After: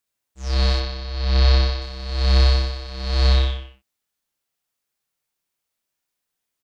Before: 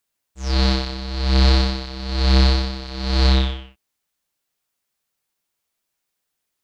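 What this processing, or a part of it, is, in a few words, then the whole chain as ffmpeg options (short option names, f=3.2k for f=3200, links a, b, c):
slapback doubling: -filter_complex "[0:a]asplit=3[a][b][c];[b]adelay=29,volume=-7.5dB[d];[c]adelay=63,volume=-5dB[e];[a][d][e]amix=inputs=3:normalize=0,asettb=1/sr,asplit=3[f][g][h];[f]atrim=end=0.804[i];[g]atrim=start=0.8:end=1.82,asetpts=PTS-STARTPTS,afade=t=in:d=0.004:c=qsin,afade=t=out:st=1.016:d=0.004:c=qsin,lowpass=f=6.1k:w=0.5412,lowpass=f=6.1k:w=1.3066[j];[h]atrim=start=1.816[k];[i][j]acrossfade=d=0.004:c1=hsin:c2=qsin[l];[l][k]acrossfade=d=0.004:c1=qsin:c2=hsin,volume=-4.5dB"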